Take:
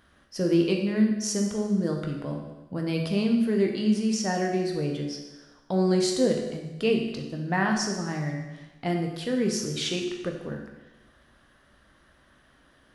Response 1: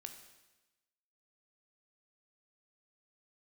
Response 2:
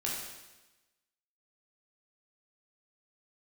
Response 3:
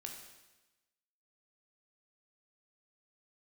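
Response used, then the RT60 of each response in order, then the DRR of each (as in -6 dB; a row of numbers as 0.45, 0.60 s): 3; 1.1, 1.1, 1.1 s; 5.5, -4.5, 1.5 dB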